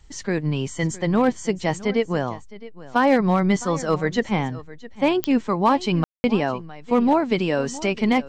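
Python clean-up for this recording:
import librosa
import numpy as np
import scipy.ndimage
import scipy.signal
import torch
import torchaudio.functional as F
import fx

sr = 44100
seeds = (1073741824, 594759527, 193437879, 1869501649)

y = fx.fix_declip(x, sr, threshold_db=-9.0)
y = fx.fix_declick_ar(y, sr, threshold=10.0)
y = fx.fix_ambience(y, sr, seeds[0], print_start_s=2.39, print_end_s=2.89, start_s=6.04, end_s=6.24)
y = fx.fix_echo_inverse(y, sr, delay_ms=662, level_db=-18.0)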